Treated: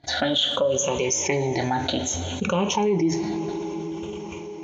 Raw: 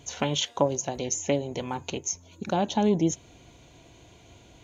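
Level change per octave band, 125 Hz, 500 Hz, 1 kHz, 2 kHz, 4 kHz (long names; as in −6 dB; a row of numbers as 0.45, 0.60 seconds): +3.5, +5.0, +4.0, +9.0, +8.5 decibels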